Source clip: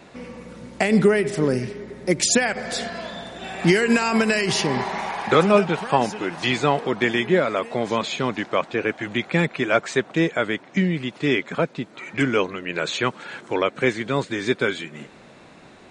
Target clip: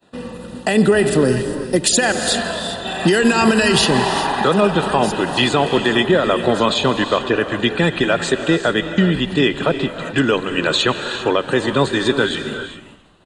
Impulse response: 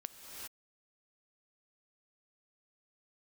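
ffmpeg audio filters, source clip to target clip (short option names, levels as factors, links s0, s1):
-filter_complex "[0:a]agate=range=0.0224:threshold=0.0158:ratio=3:detection=peak,acrossover=split=190|3000[s0][s1][s2];[s0]acompressor=threshold=0.0447:ratio=10[s3];[s3][s1][s2]amix=inputs=3:normalize=0,alimiter=limit=0.237:level=0:latency=1:release=138,aexciter=amount=1.5:drive=2.1:freq=3200,atempo=1.2,asuperstop=centerf=2200:order=8:qfactor=5.9,asplit=5[s4][s5][s6][s7][s8];[s5]adelay=167,afreqshift=-140,volume=0.0794[s9];[s6]adelay=334,afreqshift=-280,volume=0.0468[s10];[s7]adelay=501,afreqshift=-420,volume=0.0275[s11];[s8]adelay=668,afreqshift=-560,volume=0.0164[s12];[s4][s9][s10][s11][s12]amix=inputs=5:normalize=0,asplit=2[s13][s14];[1:a]atrim=start_sample=2205[s15];[s14][s15]afir=irnorm=-1:irlink=0,volume=1.26[s16];[s13][s16]amix=inputs=2:normalize=0,volume=1.41"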